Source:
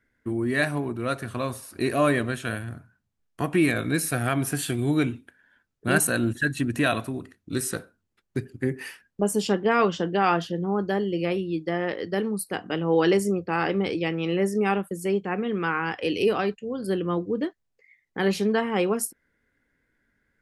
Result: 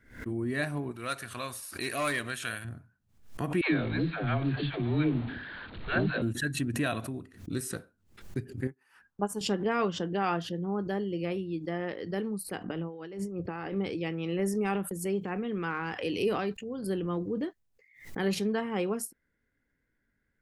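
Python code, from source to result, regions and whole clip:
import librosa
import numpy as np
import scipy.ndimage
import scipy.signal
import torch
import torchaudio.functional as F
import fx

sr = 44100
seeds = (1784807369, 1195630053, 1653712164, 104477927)

y = fx.chain(x, sr, fx.clip_hard(threshold_db=-15.5),
    fx.tilt_shelf(db=-9.0, hz=810.0), at=(0.91, 2.65))
y = fx.chain(y, sr, fx.zero_step(step_db=-28.0),
    fx.steep_lowpass(hz=4200.0, slope=96),
    fx.dispersion(late='lows', ms=121.0, hz=460.0), at=(3.61, 6.22))
y = fx.chain(y, sr, fx.band_shelf(hz=1100.0, db=11.0, octaves=1.2),
    fx.upward_expand(threshold_db=-43.0, expansion=2.5), at=(8.67, 9.41))
y = fx.chain(y, sr, fx.lowpass(hz=3100.0, slope=6),
    fx.over_compress(threshold_db=-31.0, ratio=-1.0), at=(12.64, 13.76))
y = fx.chain(y, sr, fx.high_shelf(hz=8700.0, db=5.0),
    fx.transient(attack_db=1, sustain_db=6), at=(14.39, 18.35))
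y = fx.low_shelf(y, sr, hz=230.0, db=5.5)
y = fx.pre_swell(y, sr, db_per_s=120.0)
y = y * 10.0 ** (-8.5 / 20.0)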